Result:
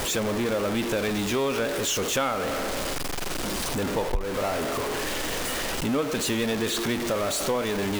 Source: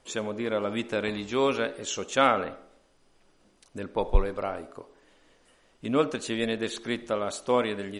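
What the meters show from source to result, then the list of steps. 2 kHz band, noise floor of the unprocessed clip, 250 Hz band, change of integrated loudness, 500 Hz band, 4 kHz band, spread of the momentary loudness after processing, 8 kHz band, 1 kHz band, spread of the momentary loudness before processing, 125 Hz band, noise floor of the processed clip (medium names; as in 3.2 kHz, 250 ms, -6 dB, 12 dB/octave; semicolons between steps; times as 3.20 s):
+4.0 dB, -64 dBFS, +4.0 dB, +2.0 dB, +2.0 dB, +7.0 dB, 4 LU, +11.0 dB, +0.5 dB, 12 LU, +5.0 dB, -29 dBFS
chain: jump at every zero crossing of -23 dBFS; compression 4:1, threshold -23 dBFS, peak gain reduction 10 dB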